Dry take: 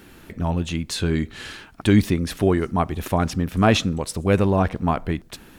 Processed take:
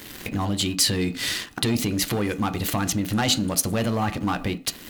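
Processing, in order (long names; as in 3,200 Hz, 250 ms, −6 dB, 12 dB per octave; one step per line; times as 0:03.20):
leveller curve on the samples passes 2
downward compressor 2 to 1, threshold −35 dBFS, peak gain reduction 14.5 dB
on a send at −9 dB: convolution reverb RT60 0.50 s, pre-delay 3 ms
on the sum: speed change +14%
in parallel at +2 dB: brickwall limiter −21 dBFS, peak gain reduction 9.5 dB
on the sum: high-shelf EQ 2,100 Hz +11.5 dB
level −5.5 dB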